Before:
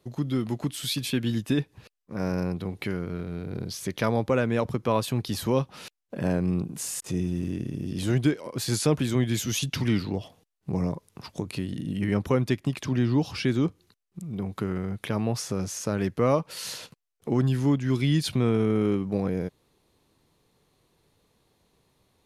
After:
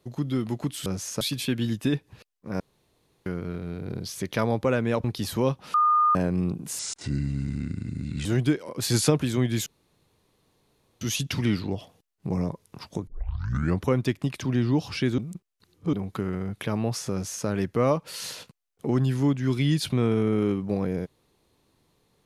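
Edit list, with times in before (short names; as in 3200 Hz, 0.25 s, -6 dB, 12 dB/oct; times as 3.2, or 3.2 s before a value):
2.25–2.91 room tone
4.69–5.14 cut
5.84–6.25 bleep 1220 Hz -17 dBFS
6.89–8.03 speed 78%
8.6–8.88 gain +3.5 dB
9.44 insert room tone 1.35 s
11.5 tape start 0.75 s
13.61–14.36 reverse
15.55–15.9 copy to 0.86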